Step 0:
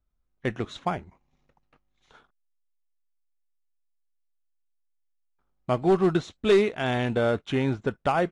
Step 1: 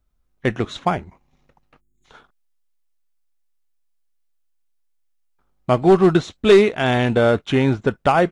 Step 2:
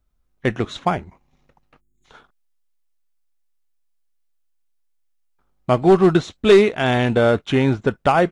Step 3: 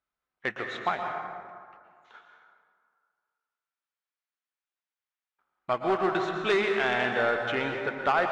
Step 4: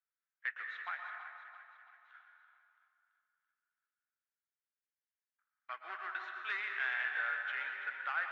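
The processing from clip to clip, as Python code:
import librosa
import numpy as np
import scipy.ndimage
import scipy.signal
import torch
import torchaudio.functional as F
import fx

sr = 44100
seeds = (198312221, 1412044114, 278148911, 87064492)

y1 = fx.spec_box(x, sr, start_s=1.8, length_s=0.25, low_hz=450.0, high_hz=6500.0, gain_db=-26)
y1 = y1 * 10.0 ** (8.0 / 20.0)
y2 = y1
y3 = fx.bandpass_q(y2, sr, hz=1600.0, q=0.92)
y3 = 10.0 ** (-12.0 / 20.0) * np.tanh(y3 / 10.0 ** (-12.0 / 20.0))
y3 = fx.rev_plate(y3, sr, seeds[0], rt60_s=2.0, hf_ratio=0.5, predelay_ms=105, drr_db=3.0)
y3 = y3 * 10.0 ** (-2.5 / 20.0)
y4 = fx.ladder_bandpass(y3, sr, hz=1900.0, resonance_pct=50)
y4 = fx.echo_feedback(y4, sr, ms=334, feedback_pct=51, wet_db=-11)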